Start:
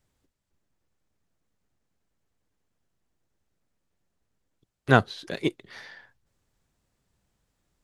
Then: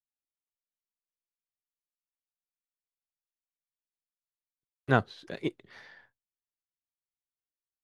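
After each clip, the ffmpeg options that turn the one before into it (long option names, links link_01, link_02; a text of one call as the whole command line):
ffmpeg -i in.wav -af "agate=range=-33dB:threshold=-50dB:ratio=3:detection=peak,highshelf=frequency=4300:gain=-8.5,volume=-5.5dB" out.wav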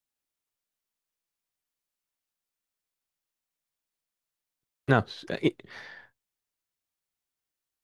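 ffmpeg -i in.wav -af "alimiter=limit=-15.5dB:level=0:latency=1:release=46,volume=7dB" out.wav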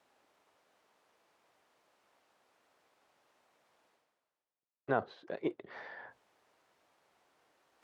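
ffmpeg -i in.wav -af "areverse,acompressor=mode=upward:threshold=-27dB:ratio=2.5,areverse,bandpass=frequency=670:width_type=q:width=0.96:csg=0,volume=-5dB" out.wav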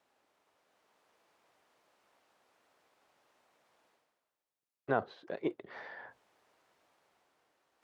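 ffmpeg -i in.wav -af "dynaudnorm=framelen=140:gausssize=11:maxgain=4dB,volume=-3.5dB" out.wav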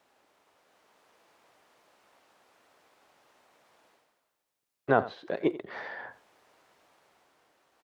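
ffmpeg -i in.wav -af "aecho=1:1:88:0.15,volume=7.5dB" out.wav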